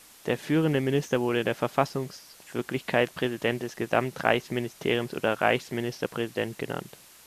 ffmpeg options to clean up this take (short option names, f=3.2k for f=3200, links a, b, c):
-af "afftdn=nr=19:nf=-53"